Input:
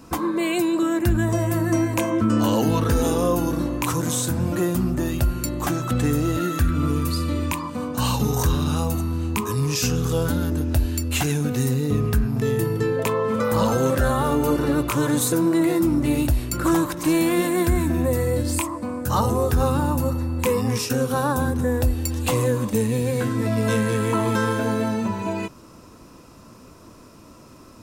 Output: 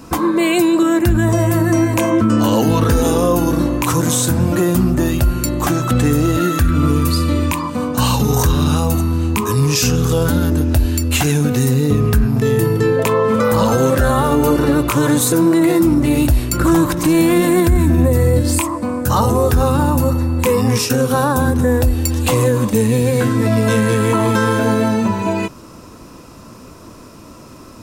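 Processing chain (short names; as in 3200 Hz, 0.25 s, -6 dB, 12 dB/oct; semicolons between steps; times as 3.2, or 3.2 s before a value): 16.6–18.42 low shelf 230 Hz +7.5 dB; limiter -13.5 dBFS, peak gain reduction 8 dB; gain +8 dB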